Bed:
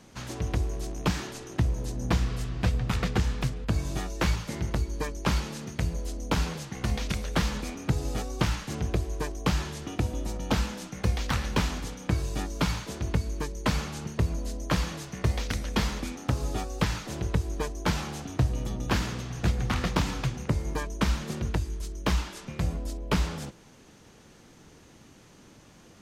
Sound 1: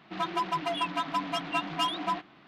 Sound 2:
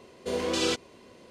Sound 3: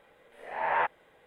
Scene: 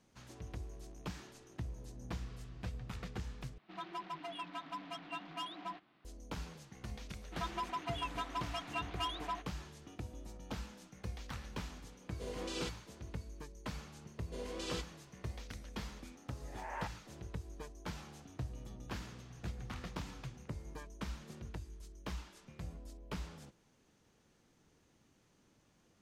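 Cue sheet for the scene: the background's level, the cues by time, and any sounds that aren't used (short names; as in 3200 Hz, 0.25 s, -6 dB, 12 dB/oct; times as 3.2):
bed -17 dB
3.58 replace with 1 -14 dB
7.21 add 1 -9.5 dB + bell 110 Hz -12 dB 1.6 oct
11.94 add 2 -14.5 dB
14.06 add 2 -15 dB
16.01 add 3 -16 dB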